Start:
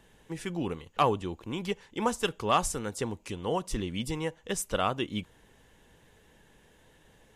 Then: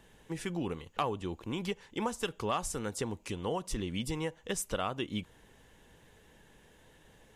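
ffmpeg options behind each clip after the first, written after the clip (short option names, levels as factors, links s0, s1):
-af "acompressor=threshold=0.0282:ratio=3"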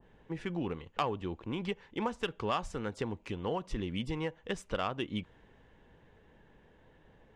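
-af "adynamicsmooth=sensitivity=1.5:basefreq=2400,adynamicequalizer=threshold=0.00398:dfrequency=1600:dqfactor=0.7:tfrequency=1600:tqfactor=0.7:attack=5:release=100:ratio=0.375:range=2.5:mode=boostabove:tftype=highshelf"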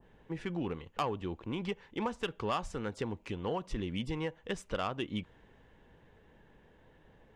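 -af "asoftclip=type=tanh:threshold=0.0841"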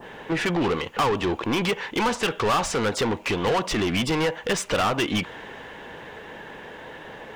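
-filter_complex "[0:a]asplit=2[s0][s1];[s1]highpass=f=720:p=1,volume=22.4,asoftclip=type=tanh:threshold=0.0794[s2];[s0][s2]amix=inputs=2:normalize=0,lowpass=f=6600:p=1,volume=0.501,volume=2.11"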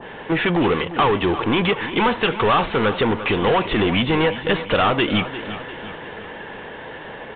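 -af "aecho=1:1:349|698|1047|1396|1745:0.224|0.114|0.0582|0.0297|0.0151,volume=1.78" -ar 8000 -c:a pcm_alaw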